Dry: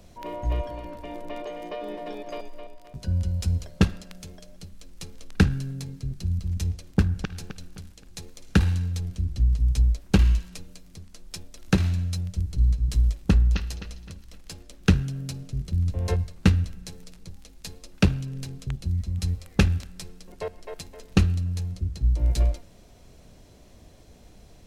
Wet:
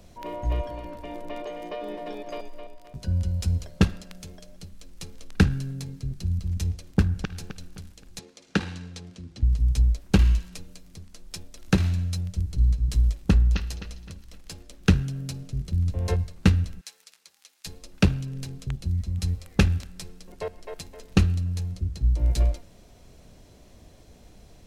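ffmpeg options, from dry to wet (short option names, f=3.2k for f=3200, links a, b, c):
-filter_complex "[0:a]asettb=1/sr,asplit=3[a][b][c];[a]atrim=end=8.194[d];[b]atrim=start=8.19:end=9.43,asetpts=PTS-STARTPTS,afade=t=in:d=0.004:c=qsin,afade=t=out:st=1.236:d=0.004:c=qsin,highpass=210,lowpass=6.5k[e];[c]atrim=start=9.426[f];[d][e]acrossfade=d=0.004:c1=hsin:c2=qsin[g];[g][f]acrossfade=d=0.004:c1=qsin:c2=hsin,asettb=1/sr,asplit=3[h][i][j];[h]atrim=end=16.814[k];[i]atrim=start=16.81:end=17.66,asetpts=PTS-STARTPTS,afade=t=in:d=0.004:c=qsin,afade=t=out:st=0.846:d=0.004:c=qsin,highpass=1.2k[l];[j]atrim=start=17.656[m];[k][l]acrossfade=d=0.004:c1=hsin:c2=qsin[n];[n][m]acrossfade=d=0.004:c1=qsin:c2=hsin"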